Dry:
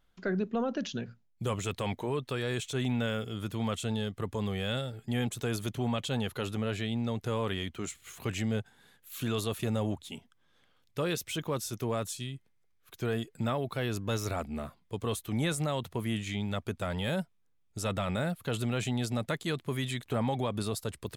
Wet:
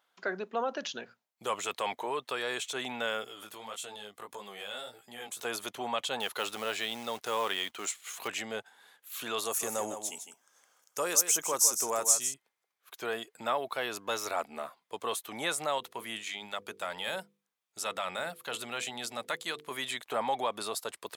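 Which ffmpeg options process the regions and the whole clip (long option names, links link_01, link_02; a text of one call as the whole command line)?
ffmpeg -i in.wav -filter_complex "[0:a]asettb=1/sr,asplit=3[link_01][link_02][link_03];[link_01]atrim=end=3.274[link_04];[link_02]atrim=start=3.27:end=5.45,asetpts=PTS-STARTPTS,afade=type=in:duration=0.004:curve=qsin,afade=type=out:start_time=2.176:duration=0.004:curve=qsin,highshelf=frequency=5800:gain=8.5,flanger=delay=15:depth=4.9:speed=1.7,acompressor=threshold=-39dB:ratio=2.5:attack=3.2:release=140:knee=1:detection=peak[link_05];[link_03]atrim=start=5.446[link_06];[link_04][link_05]acrossfade=duration=0.004:curve1=hsin:curve2=qsin[link_07];[link_07][link_06]acrossfade=duration=0.004:curve1=qsin:curve2=hsin,asettb=1/sr,asplit=3[link_08][link_09][link_10];[link_08]atrim=end=6.204[link_11];[link_09]atrim=start=6.2:end=8.28,asetpts=PTS-STARTPTS,afade=type=in:duration=0.004:curve=qsin,afade=type=out:start_time=2.076:duration=0.004:curve=qsin,equalizer=frequency=6200:width=0.44:gain=4.5,acrusher=bits=5:mode=log:mix=0:aa=0.000001[link_12];[link_10]atrim=start=8.276[link_13];[link_11][link_12]acrossfade=duration=0.004:curve1=hsin:curve2=qsin[link_14];[link_14][link_13]acrossfade=duration=0.004:curve1=qsin:curve2=hsin,asettb=1/sr,asplit=3[link_15][link_16][link_17];[link_15]atrim=end=9.454[link_18];[link_16]atrim=start=9.45:end=12.34,asetpts=PTS-STARTPTS,afade=type=in:duration=0.004:curve=qsin,afade=type=out:start_time=2.886:duration=0.004:curve=qsin,highshelf=frequency=4900:width_type=q:width=3:gain=9.5,asoftclip=type=hard:threshold=-14.5dB,aecho=1:1:156:0.355,atrim=end_sample=127449[link_19];[link_17]atrim=start=12.336[link_20];[link_18][link_19]acrossfade=duration=0.004:curve1=hsin:curve2=qsin[link_21];[link_21][link_20]acrossfade=duration=0.004:curve1=qsin:curve2=hsin,asettb=1/sr,asplit=3[link_22][link_23][link_24];[link_22]atrim=end=15.784[link_25];[link_23]atrim=start=15.78:end=19.71,asetpts=PTS-STARTPTS,afade=type=in:duration=0.004:curve=qsin,afade=type=out:start_time=3.926:duration=0.004:curve=qsin,equalizer=frequency=630:width=0.5:gain=-4.5,bandreject=frequency=50:width_type=h:width=6,bandreject=frequency=100:width_type=h:width=6,bandreject=frequency=150:width_type=h:width=6,bandreject=frequency=200:width_type=h:width=6,bandreject=frequency=250:width_type=h:width=6,bandreject=frequency=300:width_type=h:width=6,bandreject=frequency=350:width_type=h:width=6,bandreject=frequency=400:width_type=h:width=6,bandreject=frequency=450:width_type=h:width=6,bandreject=frequency=500:width_type=h:width=6[link_26];[link_24]atrim=start=19.706[link_27];[link_25][link_26]acrossfade=duration=0.004:curve1=hsin:curve2=qsin[link_28];[link_28][link_27]acrossfade=duration=0.004:curve1=qsin:curve2=hsin,highpass=560,equalizer=frequency=920:width_type=o:width=0.99:gain=4,volume=2.5dB" out.wav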